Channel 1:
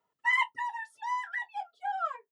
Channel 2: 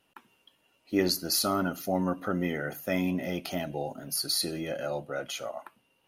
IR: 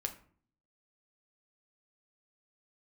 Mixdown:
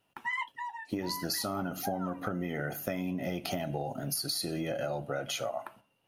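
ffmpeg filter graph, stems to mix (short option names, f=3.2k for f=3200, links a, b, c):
-filter_complex "[0:a]volume=-5dB[a];[1:a]agate=range=-9dB:threshold=-58dB:ratio=16:detection=peak,equalizer=f=120:t=o:w=1.1:g=6.5,acompressor=threshold=-28dB:ratio=6,volume=0dB,asplit=2[b][c];[c]volume=-5.5dB[d];[2:a]atrim=start_sample=2205[e];[d][e]afir=irnorm=-1:irlink=0[f];[a][b][f]amix=inputs=3:normalize=0,equalizer=f=710:t=o:w=0.34:g=4.5,acompressor=threshold=-30dB:ratio=6"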